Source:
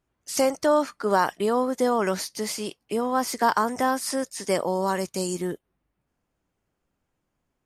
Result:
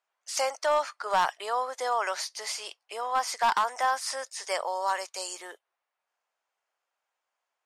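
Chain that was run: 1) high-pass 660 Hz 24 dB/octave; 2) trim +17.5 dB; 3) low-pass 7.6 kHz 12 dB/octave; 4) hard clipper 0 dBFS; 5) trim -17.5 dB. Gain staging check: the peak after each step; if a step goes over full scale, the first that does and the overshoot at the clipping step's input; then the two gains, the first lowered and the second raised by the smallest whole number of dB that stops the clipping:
-8.0 dBFS, +9.5 dBFS, +9.0 dBFS, 0.0 dBFS, -17.5 dBFS; step 2, 9.0 dB; step 2 +8.5 dB, step 5 -8.5 dB

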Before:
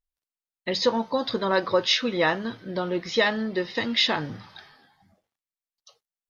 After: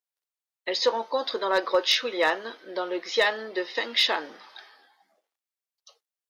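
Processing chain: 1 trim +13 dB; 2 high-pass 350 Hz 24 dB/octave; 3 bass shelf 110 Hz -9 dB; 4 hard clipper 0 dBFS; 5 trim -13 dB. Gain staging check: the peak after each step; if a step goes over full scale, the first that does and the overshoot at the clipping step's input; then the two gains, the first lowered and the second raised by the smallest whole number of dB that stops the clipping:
+4.5 dBFS, +4.5 dBFS, +4.5 dBFS, 0.0 dBFS, -13.0 dBFS; step 1, 4.5 dB; step 1 +8 dB, step 5 -8 dB

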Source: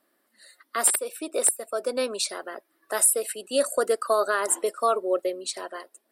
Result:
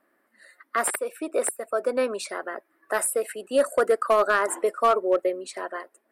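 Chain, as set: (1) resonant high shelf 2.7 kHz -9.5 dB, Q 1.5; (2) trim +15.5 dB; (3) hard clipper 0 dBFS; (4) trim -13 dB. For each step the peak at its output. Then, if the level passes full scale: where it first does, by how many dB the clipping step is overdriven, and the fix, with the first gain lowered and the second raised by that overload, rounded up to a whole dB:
-11.0 dBFS, +4.5 dBFS, 0.0 dBFS, -13.0 dBFS; step 2, 4.5 dB; step 2 +10.5 dB, step 4 -8 dB

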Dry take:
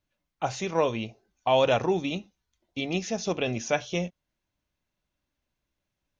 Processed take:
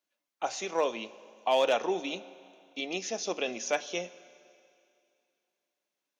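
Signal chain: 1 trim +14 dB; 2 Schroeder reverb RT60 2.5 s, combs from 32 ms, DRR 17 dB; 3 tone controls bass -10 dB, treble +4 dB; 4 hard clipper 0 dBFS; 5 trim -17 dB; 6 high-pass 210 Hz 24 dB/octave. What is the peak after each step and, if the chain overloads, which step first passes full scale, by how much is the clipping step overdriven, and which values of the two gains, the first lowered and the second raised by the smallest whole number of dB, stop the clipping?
+3.0 dBFS, +3.0 dBFS, +3.5 dBFS, 0.0 dBFS, -17.0 dBFS, -14.0 dBFS; step 1, 3.5 dB; step 1 +10 dB, step 5 -13 dB

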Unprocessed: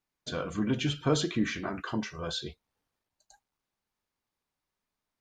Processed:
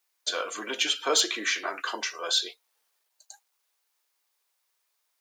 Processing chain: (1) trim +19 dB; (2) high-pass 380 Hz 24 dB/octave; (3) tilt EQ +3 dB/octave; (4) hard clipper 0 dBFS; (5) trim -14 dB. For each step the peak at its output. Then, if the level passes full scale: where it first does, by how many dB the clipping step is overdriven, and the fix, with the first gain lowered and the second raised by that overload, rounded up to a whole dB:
+5.5 dBFS, +2.0 dBFS, +5.5 dBFS, 0.0 dBFS, -14.0 dBFS; step 1, 5.5 dB; step 1 +13 dB, step 5 -8 dB

